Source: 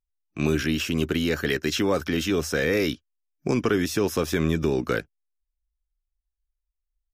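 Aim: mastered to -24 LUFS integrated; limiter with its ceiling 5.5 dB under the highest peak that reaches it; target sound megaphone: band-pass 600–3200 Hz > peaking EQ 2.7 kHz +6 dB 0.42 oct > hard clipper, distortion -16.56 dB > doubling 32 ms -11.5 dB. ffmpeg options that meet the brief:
-filter_complex "[0:a]alimiter=limit=0.15:level=0:latency=1,highpass=600,lowpass=3200,equalizer=f=2700:t=o:w=0.42:g=6,asoftclip=type=hard:threshold=0.0596,asplit=2[s0][s1];[s1]adelay=32,volume=0.266[s2];[s0][s2]amix=inputs=2:normalize=0,volume=2.66"

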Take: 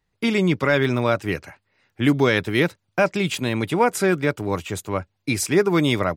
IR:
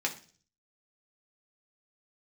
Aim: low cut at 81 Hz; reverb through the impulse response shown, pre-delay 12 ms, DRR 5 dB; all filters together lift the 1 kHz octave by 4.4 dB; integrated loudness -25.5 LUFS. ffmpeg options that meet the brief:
-filter_complex "[0:a]highpass=81,equalizer=f=1000:t=o:g=5.5,asplit=2[s0][s1];[1:a]atrim=start_sample=2205,adelay=12[s2];[s1][s2]afir=irnorm=-1:irlink=0,volume=0.282[s3];[s0][s3]amix=inputs=2:normalize=0,volume=0.501"

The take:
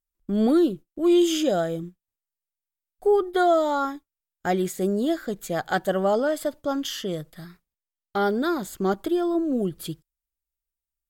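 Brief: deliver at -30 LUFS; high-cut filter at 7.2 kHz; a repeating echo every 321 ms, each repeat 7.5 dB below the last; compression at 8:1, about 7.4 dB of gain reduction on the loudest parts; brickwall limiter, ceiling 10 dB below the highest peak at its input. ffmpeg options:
-af "lowpass=7200,acompressor=threshold=0.0708:ratio=8,alimiter=limit=0.0631:level=0:latency=1,aecho=1:1:321|642|963|1284|1605:0.422|0.177|0.0744|0.0312|0.0131,volume=1.26"

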